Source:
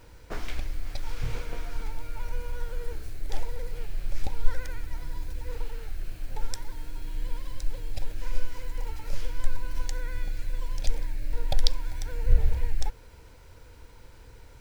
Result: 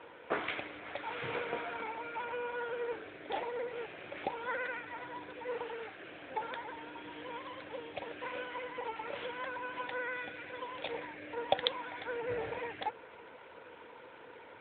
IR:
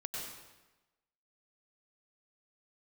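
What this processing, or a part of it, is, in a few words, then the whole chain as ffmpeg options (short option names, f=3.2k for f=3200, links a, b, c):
telephone: -af "highpass=380,lowpass=3.5k,volume=8dB" -ar 8000 -c:a libopencore_amrnb -b:a 12200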